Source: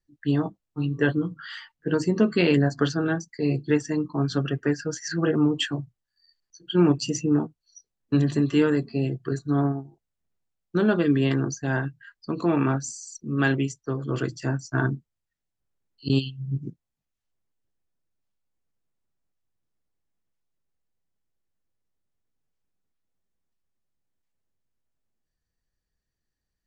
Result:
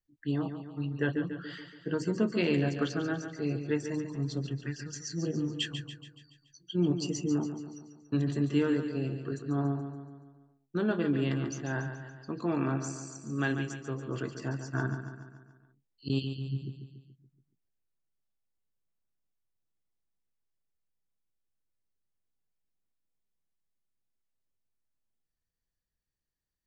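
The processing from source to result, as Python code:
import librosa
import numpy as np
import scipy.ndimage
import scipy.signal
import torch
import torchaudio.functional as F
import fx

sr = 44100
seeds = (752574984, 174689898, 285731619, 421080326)

y = fx.phaser_stages(x, sr, stages=2, low_hz=470.0, high_hz=1400.0, hz=1.2, feedback_pct=40, at=(4.12, 6.91), fade=0.02)
y = fx.echo_feedback(y, sr, ms=142, feedback_pct=54, wet_db=-9.0)
y = y * librosa.db_to_amplitude(-8.0)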